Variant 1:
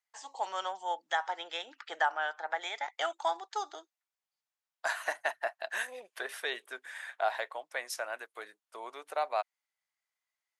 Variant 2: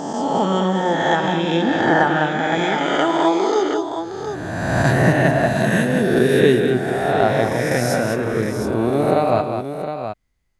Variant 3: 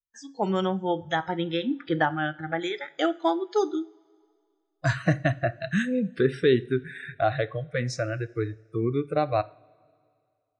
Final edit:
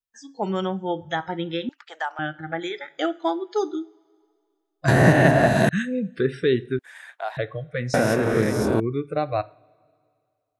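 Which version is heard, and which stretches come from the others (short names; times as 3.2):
3
1.69–2.19 from 1
4.88–5.69 from 2
6.79–7.37 from 1
7.94–8.8 from 2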